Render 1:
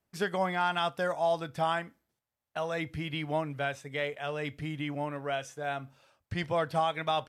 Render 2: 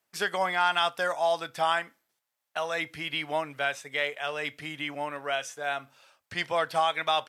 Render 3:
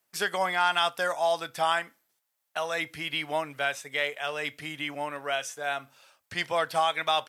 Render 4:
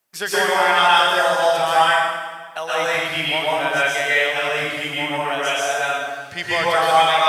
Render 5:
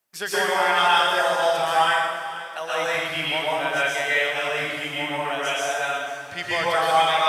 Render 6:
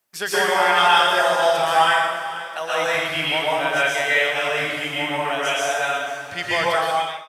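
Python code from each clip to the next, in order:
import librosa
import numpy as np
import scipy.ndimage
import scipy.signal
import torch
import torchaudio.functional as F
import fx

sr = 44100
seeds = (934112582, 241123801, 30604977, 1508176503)

y1 = fx.highpass(x, sr, hz=1100.0, slope=6)
y1 = y1 * 10.0 ** (7.5 / 20.0)
y2 = fx.high_shelf(y1, sr, hz=7700.0, db=7.0)
y3 = fx.rev_plate(y2, sr, seeds[0], rt60_s=1.5, hf_ratio=0.85, predelay_ms=105, drr_db=-8.5)
y3 = y3 * 10.0 ** (2.5 / 20.0)
y4 = fx.echo_feedback(y3, sr, ms=489, feedback_pct=50, wet_db=-15.5)
y4 = y4 * 10.0 ** (-4.0 / 20.0)
y5 = fx.fade_out_tail(y4, sr, length_s=0.62)
y5 = y5 * 10.0 ** (3.0 / 20.0)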